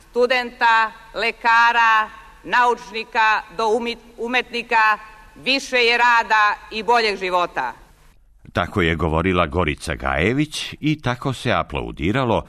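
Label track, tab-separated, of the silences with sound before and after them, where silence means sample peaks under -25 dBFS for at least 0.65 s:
7.710000	8.560000	silence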